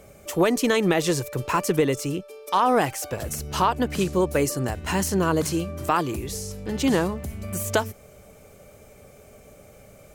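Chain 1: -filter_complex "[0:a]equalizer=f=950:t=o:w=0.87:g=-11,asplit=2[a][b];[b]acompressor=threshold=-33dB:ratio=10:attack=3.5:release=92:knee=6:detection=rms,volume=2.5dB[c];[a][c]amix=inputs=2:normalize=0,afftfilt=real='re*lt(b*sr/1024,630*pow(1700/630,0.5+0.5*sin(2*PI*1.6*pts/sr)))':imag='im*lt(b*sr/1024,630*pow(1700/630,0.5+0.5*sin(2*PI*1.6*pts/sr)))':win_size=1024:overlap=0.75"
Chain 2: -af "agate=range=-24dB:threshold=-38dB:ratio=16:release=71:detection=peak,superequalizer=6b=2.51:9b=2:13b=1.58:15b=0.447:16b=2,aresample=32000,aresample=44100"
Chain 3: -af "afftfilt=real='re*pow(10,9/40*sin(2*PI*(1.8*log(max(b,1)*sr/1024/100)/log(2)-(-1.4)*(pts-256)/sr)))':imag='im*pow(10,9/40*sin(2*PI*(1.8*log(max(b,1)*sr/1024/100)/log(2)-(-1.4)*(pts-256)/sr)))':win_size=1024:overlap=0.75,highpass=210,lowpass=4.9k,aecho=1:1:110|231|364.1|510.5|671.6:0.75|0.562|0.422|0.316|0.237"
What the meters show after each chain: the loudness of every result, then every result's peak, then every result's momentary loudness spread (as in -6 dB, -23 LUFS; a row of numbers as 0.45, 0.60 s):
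-25.0, -21.0, -21.5 LUFS; -9.5, -4.0, -4.0 dBFS; 9, 11, 10 LU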